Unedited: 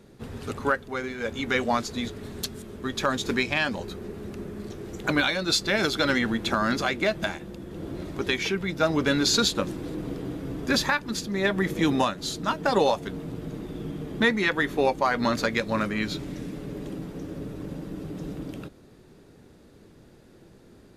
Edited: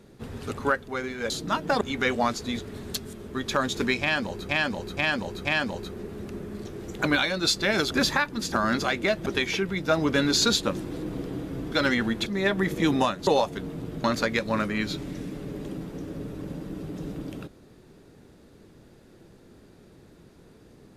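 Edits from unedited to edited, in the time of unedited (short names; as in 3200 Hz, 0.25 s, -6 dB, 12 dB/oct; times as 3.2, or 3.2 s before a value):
3.5–3.98 loop, 4 plays
5.96–6.5 swap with 10.64–11.25
7.24–8.18 cut
12.26–12.77 move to 1.3
13.54–15.25 cut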